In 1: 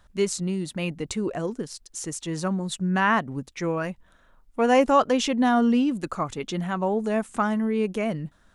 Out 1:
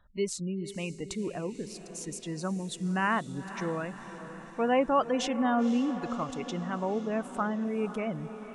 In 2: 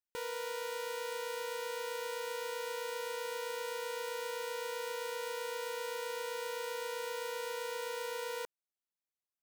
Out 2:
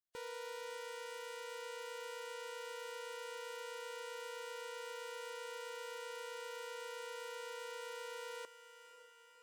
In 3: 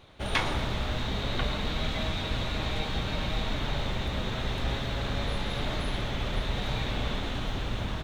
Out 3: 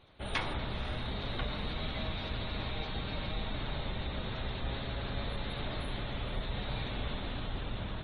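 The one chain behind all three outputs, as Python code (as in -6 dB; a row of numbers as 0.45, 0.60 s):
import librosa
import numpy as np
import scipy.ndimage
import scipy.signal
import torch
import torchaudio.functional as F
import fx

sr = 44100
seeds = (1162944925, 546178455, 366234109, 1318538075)

y = fx.spec_gate(x, sr, threshold_db=-30, keep='strong')
y = fx.echo_diffused(y, sr, ms=519, feedback_pct=62, wet_db=-12.5)
y = y * librosa.db_to_amplitude(-6.5)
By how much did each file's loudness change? -6.5, -7.0, -6.5 LU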